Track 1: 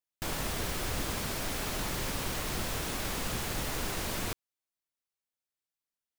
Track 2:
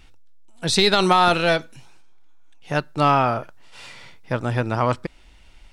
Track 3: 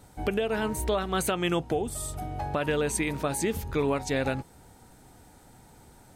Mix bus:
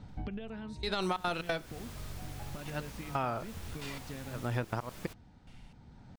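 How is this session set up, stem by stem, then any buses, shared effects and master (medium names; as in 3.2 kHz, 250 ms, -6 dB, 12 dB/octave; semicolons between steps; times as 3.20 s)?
-15.0 dB, 0.80 s, no send, none
-8.0 dB, 0.00 s, no send, level rider gain up to 5.5 dB; slow attack 297 ms; trance gate ".xx.xx....xxxx" 181 bpm -24 dB
-1.5 dB, 0.00 s, no send, low-pass 5 kHz 24 dB/octave; resonant low shelf 280 Hz +7.5 dB, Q 1.5; compression 6:1, threshold -31 dBFS, peak gain reduction 12 dB; auto duck -8 dB, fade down 0.55 s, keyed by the second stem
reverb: none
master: compression 4:1, threshold -31 dBFS, peak gain reduction 12 dB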